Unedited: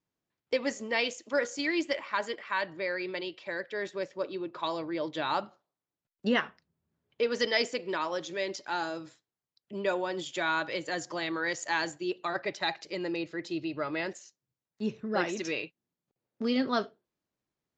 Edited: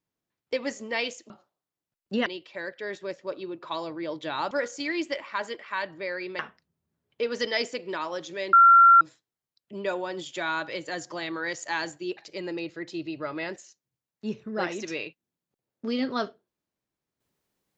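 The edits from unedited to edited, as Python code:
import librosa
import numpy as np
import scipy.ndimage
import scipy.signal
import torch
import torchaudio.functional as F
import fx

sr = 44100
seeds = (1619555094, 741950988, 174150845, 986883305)

y = fx.edit(x, sr, fx.swap(start_s=1.3, length_s=1.88, other_s=5.43, other_length_s=0.96),
    fx.bleep(start_s=8.53, length_s=0.48, hz=1370.0, db=-11.0),
    fx.cut(start_s=12.17, length_s=0.57), tone=tone)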